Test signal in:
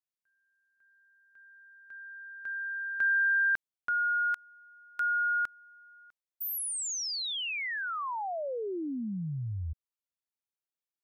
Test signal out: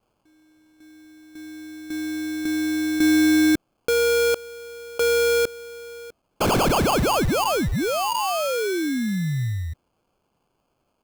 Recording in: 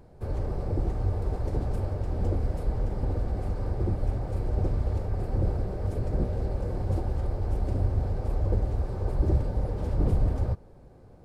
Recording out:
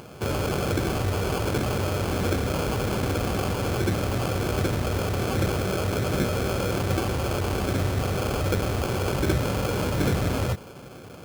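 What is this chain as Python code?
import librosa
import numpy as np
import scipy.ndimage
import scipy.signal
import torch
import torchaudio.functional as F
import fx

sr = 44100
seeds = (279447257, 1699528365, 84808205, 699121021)

p1 = scipy.signal.sosfilt(scipy.signal.butter(2, 130.0, 'highpass', fs=sr, output='sos'), x)
p2 = fx.high_shelf(p1, sr, hz=2000.0, db=9.0)
p3 = fx.over_compress(p2, sr, threshold_db=-38.0, ratio=-1.0)
p4 = p2 + (p3 * librosa.db_to_amplitude(-3.0))
p5 = fx.sample_hold(p4, sr, seeds[0], rate_hz=1900.0, jitter_pct=0)
y = p5 * librosa.db_to_amplitude(5.5)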